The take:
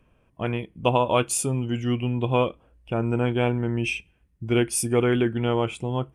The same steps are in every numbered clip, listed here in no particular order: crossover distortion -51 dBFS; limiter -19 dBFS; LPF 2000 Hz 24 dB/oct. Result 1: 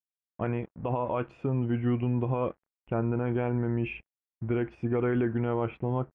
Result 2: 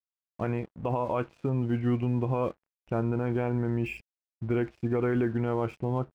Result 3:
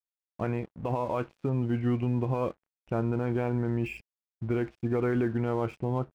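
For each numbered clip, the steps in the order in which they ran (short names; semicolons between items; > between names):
crossover distortion > limiter > LPF; LPF > crossover distortion > limiter; limiter > LPF > crossover distortion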